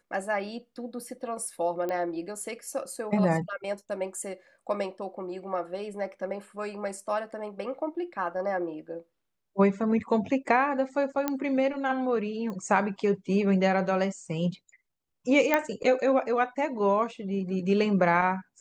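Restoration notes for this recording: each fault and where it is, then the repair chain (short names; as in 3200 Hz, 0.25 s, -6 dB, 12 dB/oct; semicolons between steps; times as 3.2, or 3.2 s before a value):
1.89 pop -20 dBFS
11.28 pop -13 dBFS
12.5 pop -25 dBFS
15.54 pop -9 dBFS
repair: de-click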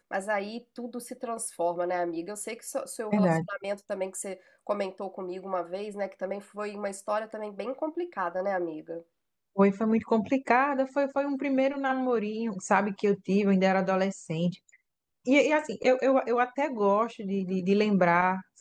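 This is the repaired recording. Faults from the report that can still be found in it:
none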